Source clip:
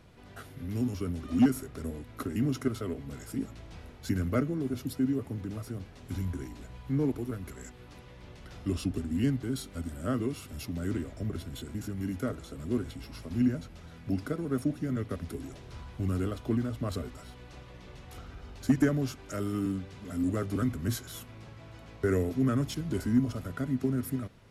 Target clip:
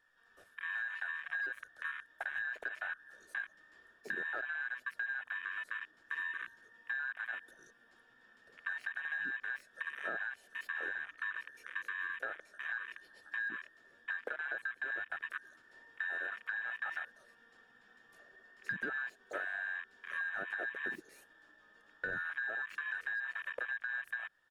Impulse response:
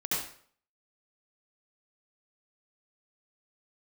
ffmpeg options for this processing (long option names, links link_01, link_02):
-filter_complex "[0:a]afftfilt=real='real(if(between(b,1,1012),(2*floor((b-1)/92)+1)*92-b,b),0)':imag='imag(if(between(b,1,1012),(2*floor((b-1)/92)+1)*92-b,b),0)*if(between(b,1,1012),-1,1)':win_size=2048:overlap=0.75,acrossover=split=210|510|3500[link_01][link_02][link_03][link_04];[link_02]dynaudnorm=framelen=510:gausssize=11:maxgain=11dB[link_05];[link_04]aeval=exprs='0.0106*(abs(mod(val(0)/0.0106+3,4)-2)-1)':channel_layout=same[link_06];[link_01][link_05][link_03][link_06]amix=inputs=4:normalize=0,asetrate=41625,aresample=44100,atempo=1.05946,volume=18.5dB,asoftclip=hard,volume=-18.5dB,afwtdn=0.0224,alimiter=limit=-22dB:level=0:latency=1:release=94,acrossover=split=240[link_07][link_08];[link_08]acompressor=threshold=-36dB:ratio=6[link_09];[link_07][link_09]amix=inputs=2:normalize=0"